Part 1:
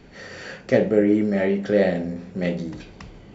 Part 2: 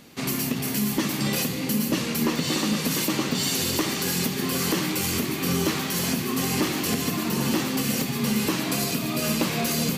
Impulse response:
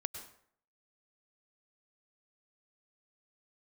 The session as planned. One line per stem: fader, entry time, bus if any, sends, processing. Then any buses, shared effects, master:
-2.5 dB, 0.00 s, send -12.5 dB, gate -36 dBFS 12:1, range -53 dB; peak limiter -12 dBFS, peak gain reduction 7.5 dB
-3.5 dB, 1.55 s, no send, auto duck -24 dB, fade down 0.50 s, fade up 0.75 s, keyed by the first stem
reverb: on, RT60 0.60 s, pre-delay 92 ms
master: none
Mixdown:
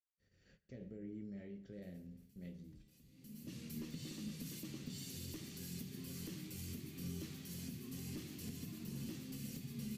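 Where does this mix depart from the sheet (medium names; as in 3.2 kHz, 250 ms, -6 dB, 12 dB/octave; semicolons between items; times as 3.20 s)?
stem 1 -2.5 dB -> -10.0 dB; master: extra amplifier tone stack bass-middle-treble 10-0-1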